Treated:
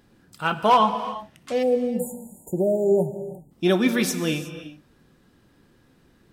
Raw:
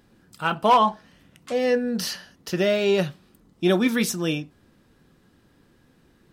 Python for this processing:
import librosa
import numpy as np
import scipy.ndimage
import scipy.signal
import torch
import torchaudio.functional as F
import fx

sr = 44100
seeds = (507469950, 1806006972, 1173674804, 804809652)

y = fx.spec_erase(x, sr, start_s=1.63, length_s=1.88, low_hz=960.0, high_hz=6800.0)
y = fx.rev_gated(y, sr, seeds[0], gate_ms=390, shape='flat', drr_db=9.5)